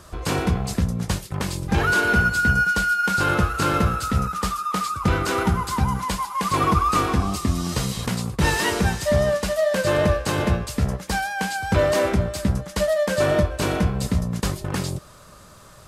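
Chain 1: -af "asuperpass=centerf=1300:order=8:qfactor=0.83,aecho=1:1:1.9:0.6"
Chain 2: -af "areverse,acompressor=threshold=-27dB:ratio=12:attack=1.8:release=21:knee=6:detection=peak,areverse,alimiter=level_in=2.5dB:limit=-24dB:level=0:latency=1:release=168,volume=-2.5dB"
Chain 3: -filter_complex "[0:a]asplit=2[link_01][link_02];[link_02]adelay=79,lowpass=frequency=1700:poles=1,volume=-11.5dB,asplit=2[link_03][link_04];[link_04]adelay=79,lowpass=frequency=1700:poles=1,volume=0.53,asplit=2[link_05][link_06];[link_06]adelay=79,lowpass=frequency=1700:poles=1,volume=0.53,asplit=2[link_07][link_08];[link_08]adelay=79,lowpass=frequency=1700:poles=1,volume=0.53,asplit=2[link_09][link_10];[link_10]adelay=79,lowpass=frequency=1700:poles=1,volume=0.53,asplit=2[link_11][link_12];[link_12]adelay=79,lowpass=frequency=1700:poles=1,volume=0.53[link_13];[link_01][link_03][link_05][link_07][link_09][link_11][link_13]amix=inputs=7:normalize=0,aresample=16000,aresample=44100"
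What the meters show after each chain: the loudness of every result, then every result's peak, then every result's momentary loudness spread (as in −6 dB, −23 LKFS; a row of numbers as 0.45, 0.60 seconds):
−24.5, −34.0, −22.0 LKFS; −9.5, −26.5, −8.0 dBFS; 17, 4, 8 LU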